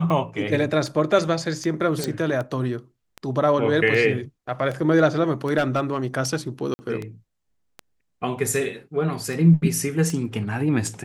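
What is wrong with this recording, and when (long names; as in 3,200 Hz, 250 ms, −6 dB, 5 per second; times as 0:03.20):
scratch tick 78 rpm −18 dBFS
0:02.04: click
0:05.57–0:05.97: clipping −15 dBFS
0:06.74–0:06.79: drop-out 50 ms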